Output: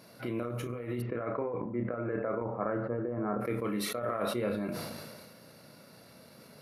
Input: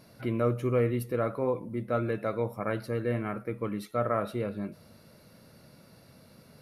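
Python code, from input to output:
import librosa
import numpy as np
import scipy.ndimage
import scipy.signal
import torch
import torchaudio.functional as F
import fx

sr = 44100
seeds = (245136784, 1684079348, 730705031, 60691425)

y = fx.echo_wet_bandpass(x, sr, ms=82, feedback_pct=36, hz=780.0, wet_db=-16.5)
y = fx.over_compress(y, sr, threshold_db=-31.0, ratio=-0.5)
y = scipy.signal.sosfilt(scipy.signal.butter(2, 100.0, 'highpass', fs=sr, output='sos'), y)
y = fx.low_shelf(y, sr, hz=200.0, db=-7.5)
y = fx.doubler(y, sr, ms=33.0, db=-7.5)
y = fx.transient(y, sr, attack_db=-1, sustain_db=-6)
y = fx.lowpass(y, sr, hz=fx.line((1.0, 2700.0), (3.4, 1200.0)), slope=24, at=(1.0, 3.4), fade=0.02)
y = fx.sustainer(y, sr, db_per_s=30.0)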